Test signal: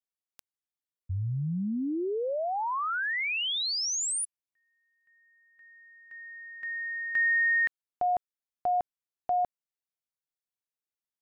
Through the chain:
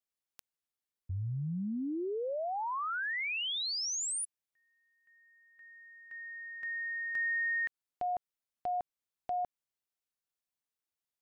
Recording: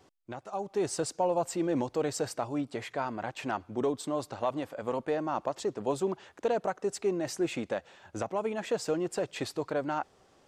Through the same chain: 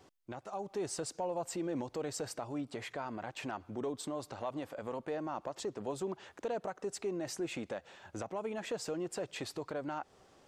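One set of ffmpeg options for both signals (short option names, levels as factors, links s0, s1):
-af "acompressor=threshold=0.0141:ratio=2:attack=0.51:release=213:knee=6:detection=peak"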